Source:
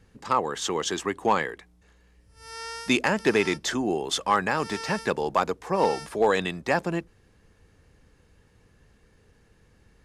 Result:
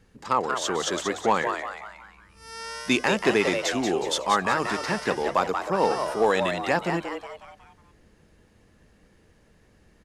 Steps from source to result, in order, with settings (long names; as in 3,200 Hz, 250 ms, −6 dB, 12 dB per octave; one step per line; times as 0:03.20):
mains-hum notches 50/100/150 Hz
echo with shifted repeats 183 ms, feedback 44%, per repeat +140 Hz, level −6.5 dB